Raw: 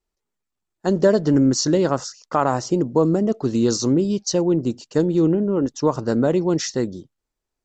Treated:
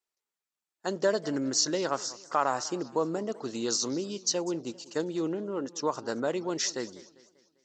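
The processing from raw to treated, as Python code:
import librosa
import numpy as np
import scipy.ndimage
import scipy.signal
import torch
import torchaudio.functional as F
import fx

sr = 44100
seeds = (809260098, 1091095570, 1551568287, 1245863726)

y = fx.highpass(x, sr, hz=1100.0, slope=6)
y = fx.echo_warbled(y, sr, ms=197, feedback_pct=47, rate_hz=2.8, cents=197, wet_db=-19.5)
y = y * librosa.db_to_amplitude(-2.5)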